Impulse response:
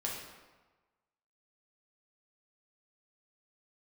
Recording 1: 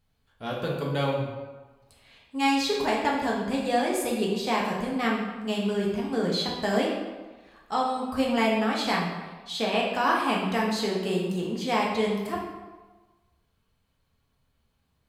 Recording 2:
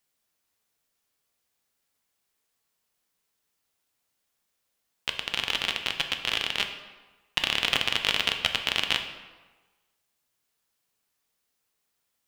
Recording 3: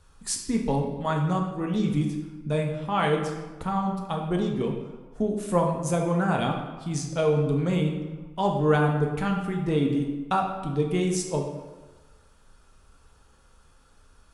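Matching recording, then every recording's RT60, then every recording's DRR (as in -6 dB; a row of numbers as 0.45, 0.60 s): 1; 1.3, 1.3, 1.3 s; -3.5, 5.0, 1.0 dB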